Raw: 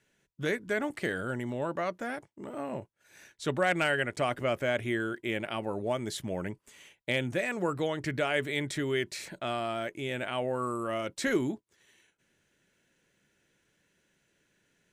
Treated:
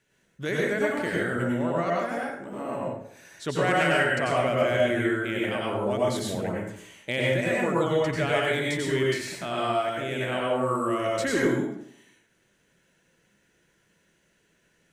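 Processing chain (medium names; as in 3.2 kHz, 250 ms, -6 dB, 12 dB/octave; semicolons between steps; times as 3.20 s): plate-style reverb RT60 0.72 s, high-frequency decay 0.65×, pre-delay 80 ms, DRR -4.5 dB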